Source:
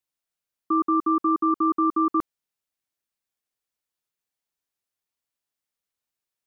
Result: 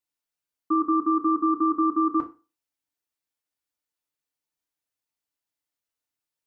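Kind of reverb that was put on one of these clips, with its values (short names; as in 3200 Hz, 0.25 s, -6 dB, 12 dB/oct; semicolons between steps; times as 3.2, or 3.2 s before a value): FDN reverb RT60 0.32 s, low-frequency decay 0.95×, high-frequency decay 0.9×, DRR 1.5 dB; gain -4 dB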